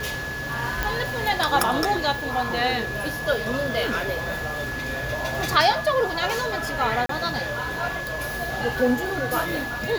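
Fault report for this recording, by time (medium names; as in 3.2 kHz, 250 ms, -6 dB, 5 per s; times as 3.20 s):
whine 1.7 kHz -30 dBFS
0.83 s: pop
7.06–7.09 s: dropout 33 ms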